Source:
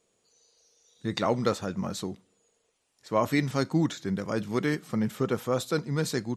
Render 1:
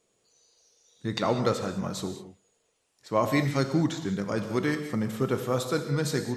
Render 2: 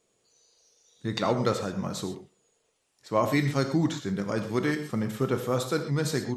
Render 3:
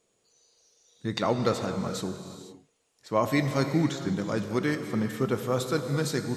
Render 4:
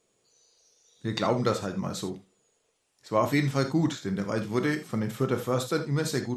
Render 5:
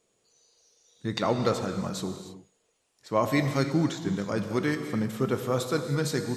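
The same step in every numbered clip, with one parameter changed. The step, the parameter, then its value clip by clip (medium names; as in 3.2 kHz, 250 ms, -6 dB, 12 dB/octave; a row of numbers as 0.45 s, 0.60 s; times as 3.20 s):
gated-style reverb, gate: 230 ms, 150 ms, 530 ms, 100 ms, 340 ms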